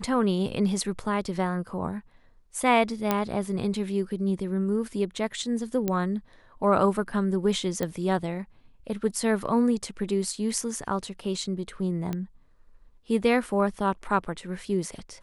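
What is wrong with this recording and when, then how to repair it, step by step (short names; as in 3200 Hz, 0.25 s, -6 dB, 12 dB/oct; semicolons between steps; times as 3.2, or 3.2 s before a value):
3.11 pop -9 dBFS
5.88 pop -13 dBFS
7.83 pop -15 dBFS
12.13 pop -18 dBFS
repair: de-click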